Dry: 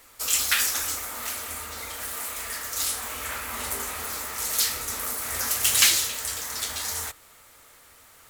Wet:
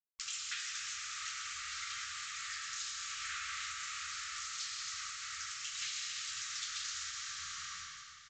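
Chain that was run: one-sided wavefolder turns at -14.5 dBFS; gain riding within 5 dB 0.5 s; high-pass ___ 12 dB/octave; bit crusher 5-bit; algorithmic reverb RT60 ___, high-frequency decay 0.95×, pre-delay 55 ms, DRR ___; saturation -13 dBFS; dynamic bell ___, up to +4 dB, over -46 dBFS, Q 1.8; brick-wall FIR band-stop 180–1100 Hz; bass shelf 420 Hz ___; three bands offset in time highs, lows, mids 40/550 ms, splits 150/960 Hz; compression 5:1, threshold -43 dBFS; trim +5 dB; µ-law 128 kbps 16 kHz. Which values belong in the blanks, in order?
86 Hz, 2.4 s, 2.5 dB, 730 Hz, -10.5 dB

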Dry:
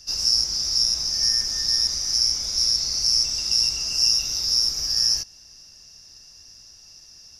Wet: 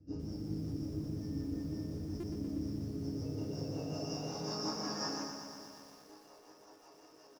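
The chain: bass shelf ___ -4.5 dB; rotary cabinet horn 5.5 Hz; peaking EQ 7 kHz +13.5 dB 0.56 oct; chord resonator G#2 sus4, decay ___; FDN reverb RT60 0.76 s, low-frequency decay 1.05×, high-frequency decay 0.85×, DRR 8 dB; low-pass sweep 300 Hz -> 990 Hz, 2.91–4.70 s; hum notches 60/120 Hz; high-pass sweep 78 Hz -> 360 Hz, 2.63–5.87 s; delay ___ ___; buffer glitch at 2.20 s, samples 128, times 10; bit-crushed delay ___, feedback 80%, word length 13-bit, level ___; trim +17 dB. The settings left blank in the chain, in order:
140 Hz, 0.23 s, 229 ms, -20.5 dB, 120 ms, -7 dB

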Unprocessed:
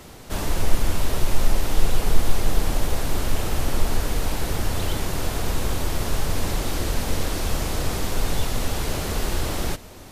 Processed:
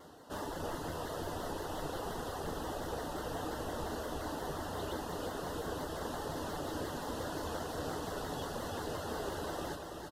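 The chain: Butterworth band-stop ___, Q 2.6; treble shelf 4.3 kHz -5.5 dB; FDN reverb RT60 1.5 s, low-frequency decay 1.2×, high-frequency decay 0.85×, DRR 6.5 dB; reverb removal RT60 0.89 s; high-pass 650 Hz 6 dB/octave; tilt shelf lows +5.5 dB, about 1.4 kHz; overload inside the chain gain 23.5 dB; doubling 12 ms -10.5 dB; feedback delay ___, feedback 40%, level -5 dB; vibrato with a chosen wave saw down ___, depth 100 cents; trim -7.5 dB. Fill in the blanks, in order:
2.3 kHz, 331 ms, 5.7 Hz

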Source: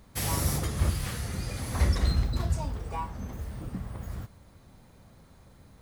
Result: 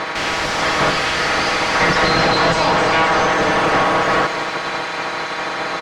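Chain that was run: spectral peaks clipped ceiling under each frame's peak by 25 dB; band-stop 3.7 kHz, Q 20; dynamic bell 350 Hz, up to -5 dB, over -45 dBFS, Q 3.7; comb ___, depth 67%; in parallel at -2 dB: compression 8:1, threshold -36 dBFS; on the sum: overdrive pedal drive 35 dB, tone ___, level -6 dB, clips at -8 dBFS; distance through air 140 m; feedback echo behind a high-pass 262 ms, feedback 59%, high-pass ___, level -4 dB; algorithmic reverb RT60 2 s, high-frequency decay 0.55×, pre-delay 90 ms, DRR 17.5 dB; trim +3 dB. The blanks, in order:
6.3 ms, 2.4 kHz, 3.6 kHz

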